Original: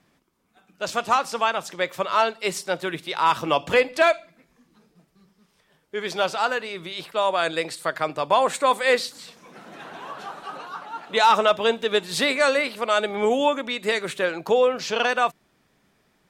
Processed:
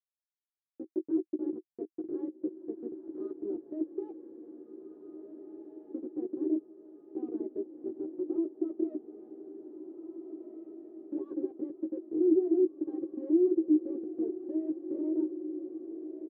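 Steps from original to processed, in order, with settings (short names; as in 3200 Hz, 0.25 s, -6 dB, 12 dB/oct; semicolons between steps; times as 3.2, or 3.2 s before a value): gate -46 dBFS, range -36 dB; harmonic-percussive split percussive -5 dB; Schmitt trigger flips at -22 dBFS; pitch shift +4 st; Butterworth band-pass 340 Hz, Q 5.3; doubler 13 ms -5 dB; diffused feedback echo 1.801 s, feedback 57%, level -11.5 dB; mismatched tape noise reduction encoder only; gain +8 dB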